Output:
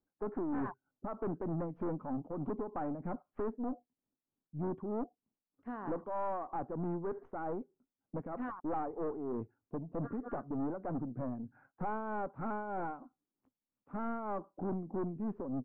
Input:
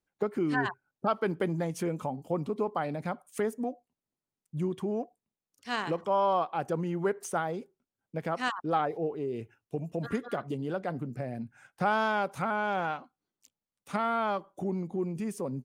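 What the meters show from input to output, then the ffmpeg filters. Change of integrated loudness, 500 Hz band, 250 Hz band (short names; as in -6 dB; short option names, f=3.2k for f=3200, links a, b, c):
-7.5 dB, -8.0 dB, -4.0 dB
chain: -af "tremolo=f=3.2:d=0.67,equalizer=f=270:t=o:w=0.49:g=9.5,aeval=exprs='(tanh(50.1*val(0)+0.4)-tanh(0.4))/50.1':c=same,lowpass=f=1.3k:w=0.5412,lowpass=f=1.3k:w=1.3066,volume=1dB"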